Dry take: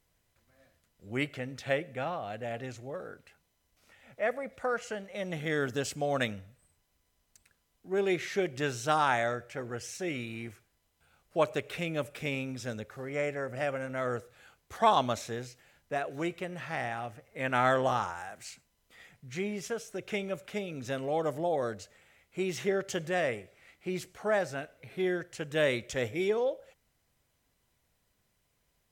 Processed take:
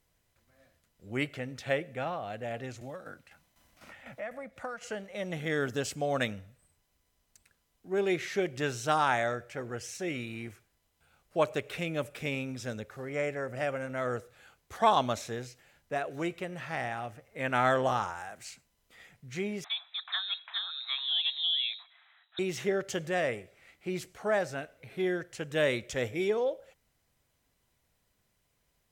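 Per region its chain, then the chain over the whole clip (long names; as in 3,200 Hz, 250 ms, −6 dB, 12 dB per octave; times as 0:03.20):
0:02.81–0:04.83: shaped tremolo saw down 4 Hz, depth 65% + parametric band 420 Hz −14 dB 0.26 octaves + multiband upward and downward compressor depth 70%
0:19.64–0:22.39: voice inversion scrambler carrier 3,900 Hz + linear-phase brick-wall high-pass 620 Hz
whole clip: no processing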